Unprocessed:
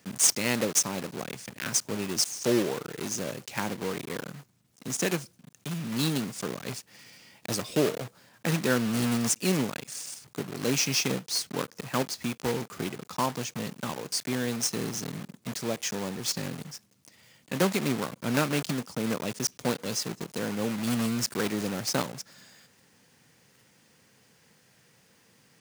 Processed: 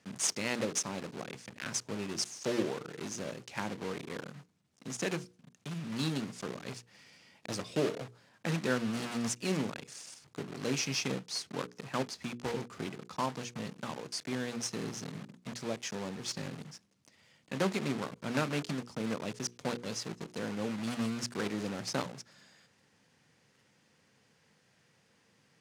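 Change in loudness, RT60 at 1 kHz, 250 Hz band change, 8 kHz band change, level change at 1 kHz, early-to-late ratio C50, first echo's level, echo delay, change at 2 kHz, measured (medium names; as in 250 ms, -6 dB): -7.0 dB, no reverb, -6.0 dB, -9.5 dB, -5.5 dB, no reverb, no echo, no echo, -5.5 dB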